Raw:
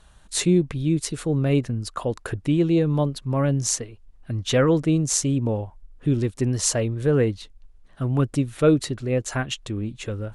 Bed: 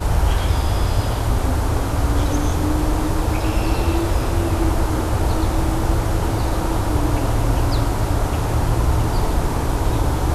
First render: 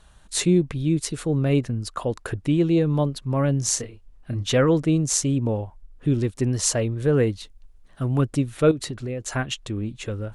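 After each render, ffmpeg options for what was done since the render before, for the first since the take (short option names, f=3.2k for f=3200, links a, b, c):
-filter_complex "[0:a]asettb=1/sr,asplit=3[a][b][c];[a]atrim=end=3.654[d];[b]atrim=start=3.65:end=4.52,asetpts=PTS-STARTPTS,afade=t=in:d=0.004:c=qsin,afade=t=out:st=0.866:d=0.004:c=qsin,asplit=2[e][f];[f]adelay=30,volume=-7dB[g];[e][g]amix=inputs=2:normalize=0,atrim=end_sample=38367[h];[c]atrim=start=4.516[i];[d][h]acrossfade=d=0.004:c1=hsin:c2=qsin[j];[j][i]acrossfade=d=0.004:c1=qsin:c2=hsin,asettb=1/sr,asplit=3[k][l][m];[k]atrim=end=7.174[n];[l]atrim=start=7.17:end=8.21,asetpts=PTS-STARTPTS,afade=t=in:d=0.004:c=qsin,afade=t=out:st=1.036:d=0.004:c=qsin,highshelf=f=7.4k:g=6.5[o];[m]atrim=start=8.206[p];[n][o]acrossfade=d=0.004:c1=hsin:c2=qsin[q];[q][p]acrossfade=d=0.004:c1=qsin:c2=hsin,asettb=1/sr,asplit=3[r][s][t];[r]atrim=end=8.714[u];[s]atrim=start=8.71:end=9.22,asetpts=PTS-STARTPTS,afade=t=in:d=0.004:c=qsin,afade=t=out:st=0.506:d=0.004:c=qsin,acompressor=threshold=-25dB:ratio=10:attack=3.2:release=140:knee=1:detection=peak[v];[t]atrim=start=9.216[w];[u][v]acrossfade=d=0.004:c1=hsin:c2=qsin[x];[x][w]acrossfade=d=0.004:c1=qsin:c2=hsin"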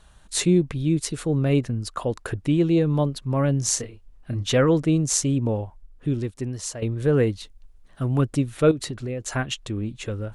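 -filter_complex "[0:a]asplit=2[a][b];[a]atrim=end=6.82,asetpts=PTS-STARTPTS,afade=t=out:st=5.64:d=1.18:silence=0.237137[c];[b]atrim=start=6.82,asetpts=PTS-STARTPTS,afade=t=in:d=0.004:c=hsin:silence=0.237137[d];[c][d]concat=n=2:v=0:a=1"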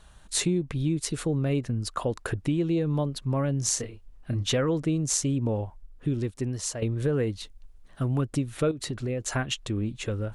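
-af "acompressor=threshold=-23dB:ratio=4"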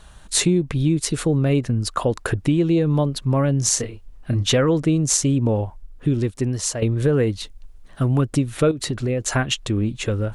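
-af "volume=7.5dB,alimiter=limit=-3dB:level=0:latency=1"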